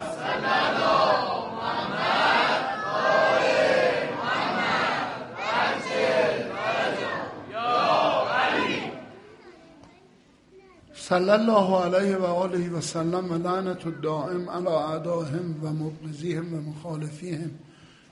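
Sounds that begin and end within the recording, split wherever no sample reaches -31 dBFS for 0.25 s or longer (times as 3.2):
11.01–17.49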